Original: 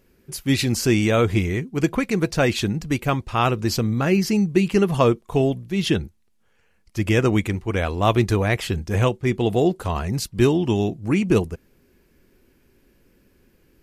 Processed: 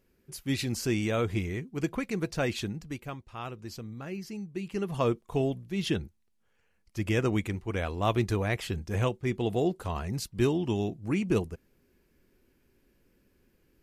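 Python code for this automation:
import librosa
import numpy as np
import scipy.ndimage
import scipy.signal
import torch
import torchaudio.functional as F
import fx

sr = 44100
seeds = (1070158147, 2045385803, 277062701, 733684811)

y = fx.gain(x, sr, db=fx.line((2.59, -10.0), (3.22, -19.0), (4.51, -19.0), (5.12, -8.5)))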